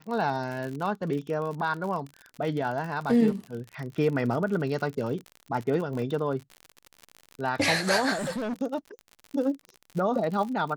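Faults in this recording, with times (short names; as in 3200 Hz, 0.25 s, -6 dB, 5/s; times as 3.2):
crackle 54/s -33 dBFS
6.02 gap 2.1 ms
8.17–8.54 clipped -27.5 dBFS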